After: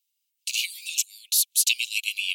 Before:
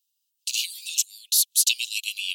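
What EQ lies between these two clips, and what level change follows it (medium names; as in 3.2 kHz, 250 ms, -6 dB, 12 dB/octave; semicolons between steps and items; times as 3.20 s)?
resonant high-pass 2.2 kHz, resonance Q 9.1; peaking EQ 13 kHz +7 dB 2.1 oct; -8.0 dB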